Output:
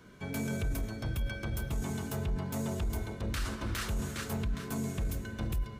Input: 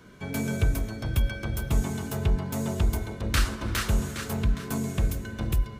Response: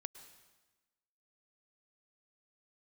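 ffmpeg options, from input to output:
-af "alimiter=limit=-22dB:level=0:latency=1:release=13,volume=-4dB"

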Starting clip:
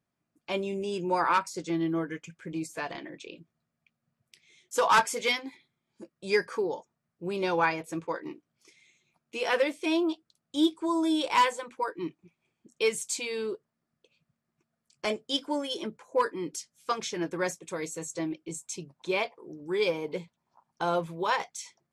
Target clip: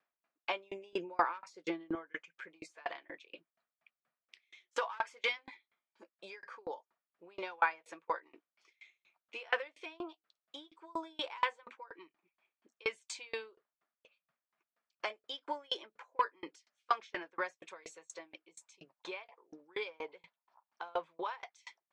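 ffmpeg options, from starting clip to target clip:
-af "acompressor=threshold=-35dB:ratio=2.5,asetnsamples=n=441:p=0,asendcmd='0.93 highpass f 430;1.95 highpass f 770',highpass=720,lowpass=2.9k,aeval=exprs='val(0)*pow(10,-33*if(lt(mod(4.2*n/s,1),2*abs(4.2)/1000),1-mod(4.2*n/s,1)/(2*abs(4.2)/1000),(mod(4.2*n/s,1)-2*abs(4.2)/1000)/(1-2*abs(4.2)/1000))/20)':c=same,volume=10.5dB"

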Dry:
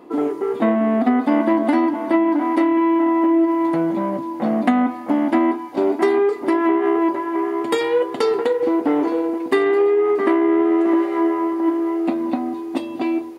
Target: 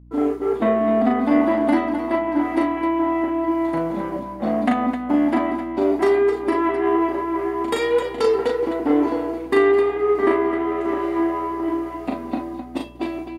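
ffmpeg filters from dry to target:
-af "agate=range=-33dB:threshold=-21dB:ratio=3:detection=peak,aecho=1:1:37.9|259.5:0.708|0.355,aeval=exprs='val(0)+0.00794*(sin(2*PI*60*n/s)+sin(2*PI*2*60*n/s)/2+sin(2*PI*3*60*n/s)/3+sin(2*PI*4*60*n/s)/4+sin(2*PI*5*60*n/s)/5)':c=same,volume=-2.5dB"

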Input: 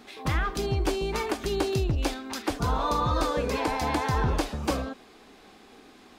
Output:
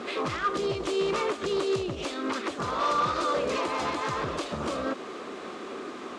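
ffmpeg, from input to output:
-filter_complex "[0:a]equalizer=f=5.3k:w=1.7:g=-10,bandreject=f=800:w=12,acrossover=split=2800[a][b];[a]acompressor=threshold=-35dB:ratio=6[c];[c][b]amix=inputs=2:normalize=0,alimiter=level_in=6.5dB:limit=-24dB:level=0:latency=1:release=255,volume=-6.5dB,acontrast=60,acrusher=bits=8:mix=0:aa=0.000001,asplit=2[d][e];[e]asetrate=52444,aresample=44100,atempo=0.840896,volume=-8dB[f];[d][f]amix=inputs=2:normalize=0,aeval=exprs='0.0335*(abs(mod(val(0)/0.0335+3,4)-2)-1)':c=same,highpass=140,equalizer=f=370:t=q:w=4:g=7,equalizer=f=570:t=q:w=4:g=6,equalizer=f=1.2k:t=q:w=4:g=9,lowpass=f=7.4k:w=0.5412,lowpass=f=7.4k:w=1.3066,volume=4dB"

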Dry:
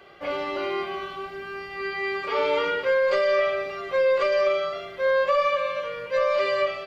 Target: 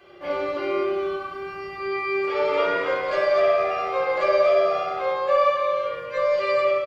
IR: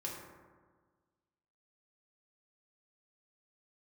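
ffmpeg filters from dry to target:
-filter_complex "[0:a]asplit=3[a][b][c];[a]afade=t=out:st=2.47:d=0.02[d];[b]asplit=6[e][f][g][h][i][j];[f]adelay=241,afreqshift=81,volume=-6.5dB[k];[g]adelay=482,afreqshift=162,volume=-14.5dB[l];[h]adelay=723,afreqshift=243,volume=-22.4dB[m];[i]adelay=964,afreqshift=324,volume=-30.4dB[n];[j]adelay=1205,afreqshift=405,volume=-38.3dB[o];[e][k][l][m][n][o]amix=inputs=6:normalize=0,afade=t=in:st=2.47:d=0.02,afade=t=out:st=5.13:d=0.02[p];[c]afade=t=in:st=5.13:d=0.02[q];[d][p][q]amix=inputs=3:normalize=0[r];[1:a]atrim=start_sample=2205[s];[r][s]afir=irnorm=-1:irlink=0"

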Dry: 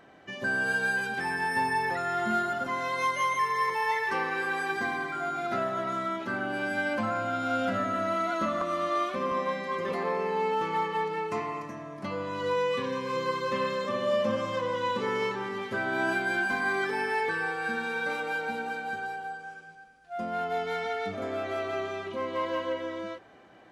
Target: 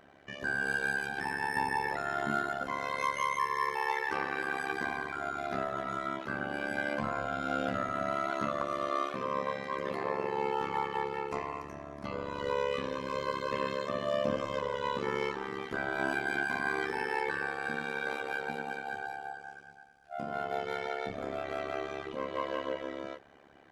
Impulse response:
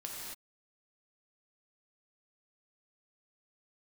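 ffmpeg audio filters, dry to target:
-af "tremolo=f=70:d=0.974,equalizer=f=75:t=o:w=0.29:g=7.5"

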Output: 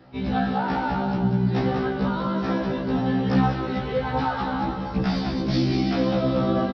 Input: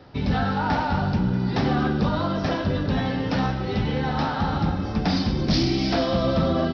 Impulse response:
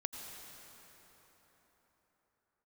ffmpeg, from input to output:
-filter_complex "[0:a]equalizer=f=68:w=1.7:g=-8,aecho=1:1:195:0.501,asplit=3[a][b][c];[a]afade=t=out:st=3.24:d=0.02[d];[b]aphaser=in_gain=1:out_gain=1:delay=4.2:decay=0.48:speed=1.2:type=triangular,afade=t=in:st=3.24:d=0.02,afade=t=out:st=5.42:d=0.02[e];[c]afade=t=in:st=5.42:d=0.02[f];[d][e][f]amix=inputs=3:normalize=0,aemphasis=mode=reproduction:type=50fm,afftfilt=real='re*1.73*eq(mod(b,3),0)':imag='im*1.73*eq(mod(b,3),0)':win_size=2048:overlap=0.75"

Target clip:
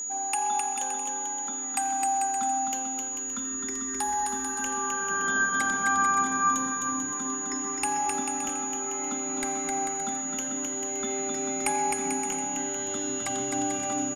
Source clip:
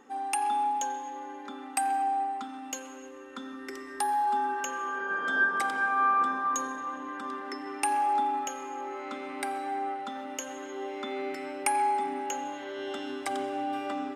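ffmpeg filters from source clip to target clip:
-af "aecho=1:1:260|442|569.4|658.6|721:0.631|0.398|0.251|0.158|0.1,aeval=exprs='val(0)+0.0282*sin(2*PI*6800*n/s)':c=same,asubboost=boost=10:cutoff=150"

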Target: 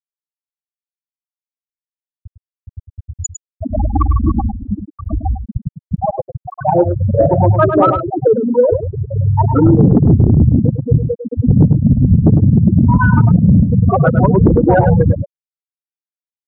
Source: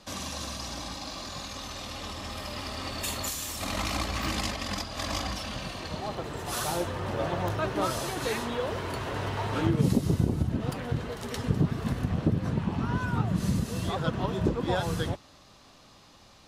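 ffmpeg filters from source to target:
-af "afftfilt=real='re*gte(hypot(re,im),0.141)':imag='im*gte(hypot(re,im),0.141)':win_size=1024:overlap=0.75,asoftclip=type=tanh:threshold=-18dB,aecho=1:1:103:0.335,alimiter=level_in=23.5dB:limit=-1dB:release=50:level=0:latency=1,volume=-1dB"

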